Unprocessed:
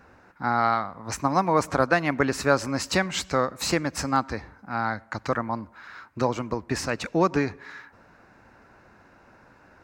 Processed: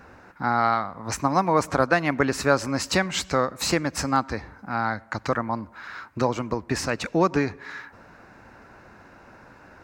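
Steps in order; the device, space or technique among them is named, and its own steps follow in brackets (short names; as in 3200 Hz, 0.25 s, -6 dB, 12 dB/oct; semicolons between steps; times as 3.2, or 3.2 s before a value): parallel compression (in parallel at -1.5 dB: compressor, threshold -37 dBFS, peak gain reduction 21 dB)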